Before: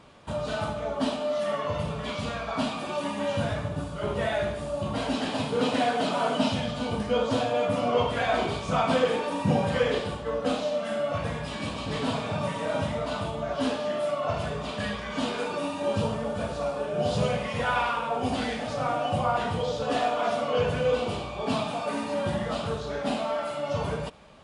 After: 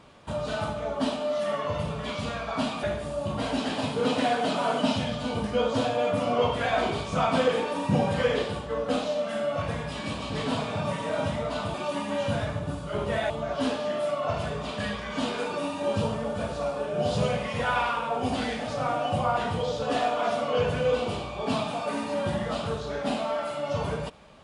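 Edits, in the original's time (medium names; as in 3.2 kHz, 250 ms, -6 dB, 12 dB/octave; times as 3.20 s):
2.83–4.39 s: move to 13.30 s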